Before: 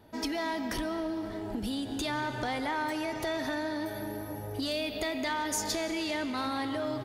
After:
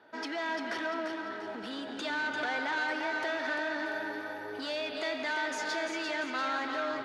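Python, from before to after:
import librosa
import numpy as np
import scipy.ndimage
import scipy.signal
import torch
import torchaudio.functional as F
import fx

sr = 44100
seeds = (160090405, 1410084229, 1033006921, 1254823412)

y = fx.peak_eq(x, sr, hz=1500.0, db=10.5, octaves=0.43)
y = np.clip(y, -10.0 ** (-29.5 / 20.0), 10.0 ** (-29.5 / 20.0))
y = fx.bandpass_edges(y, sr, low_hz=380.0, high_hz=4300.0)
y = fx.echo_feedback(y, sr, ms=345, feedback_pct=40, wet_db=-6)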